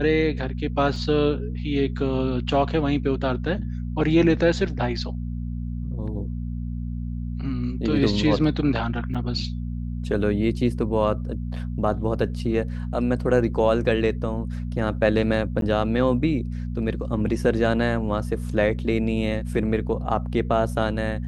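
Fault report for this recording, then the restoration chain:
mains hum 60 Hz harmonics 4 −29 dBFS
0:00.96: drop-out 2.3 ms
0:09.14–0:09.15: drop-out 6.6 ms
0:15.61–0:15.62: drop-out 12 ms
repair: hum removal 60 Hz, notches 4
repair the gap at 0:00.96, 2.3 ms
repair the gap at 0:09.14, 6.6 ms
repair the gap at 0:15.61, 12 ms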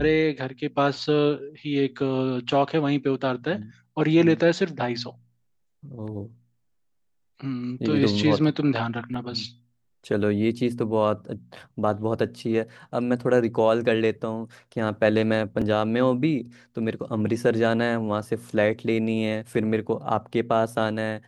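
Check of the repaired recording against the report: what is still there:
none of them is left

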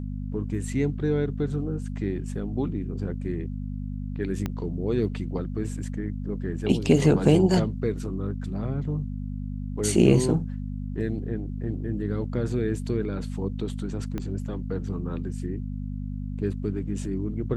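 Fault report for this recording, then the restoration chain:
mains hum 50 Hz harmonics 5 −32 dBFS
0:04.46: click −16 dBFS
0:14.18: click −19 dBFS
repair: click removal
hum removal 50 Hz, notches 5

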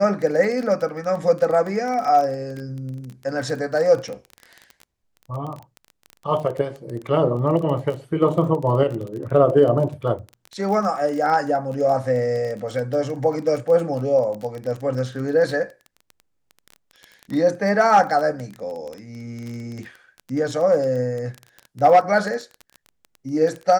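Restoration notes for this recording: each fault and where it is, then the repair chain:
surface crackle 20 per second −27 dBFS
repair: click removal

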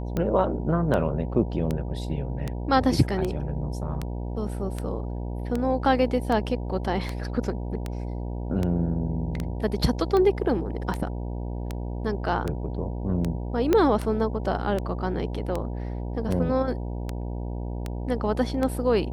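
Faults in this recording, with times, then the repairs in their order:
mains buzz 60 Hz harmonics 16 −31 dBFS
scratch tick 78 rpm −15 dBFS
0:13.73: click −9 dBFS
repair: click removal
hum removal 60 Hz, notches 16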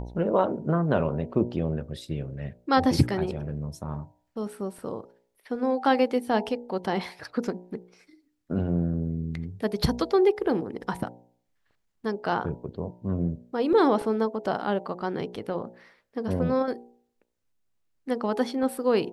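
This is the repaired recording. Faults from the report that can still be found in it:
0:13.73: click

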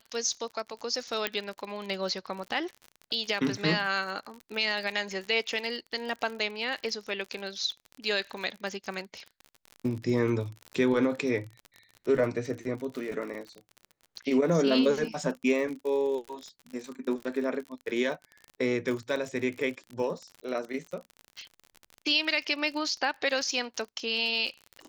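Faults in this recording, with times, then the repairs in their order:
surface crackle 49 per second −35 dBFS
0:01.27: click −12 dBFS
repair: click removal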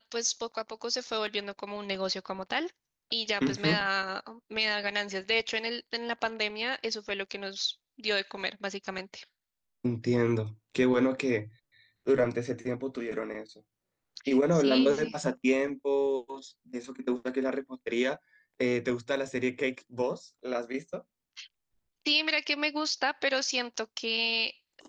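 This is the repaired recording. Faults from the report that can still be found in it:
0:01.27: click

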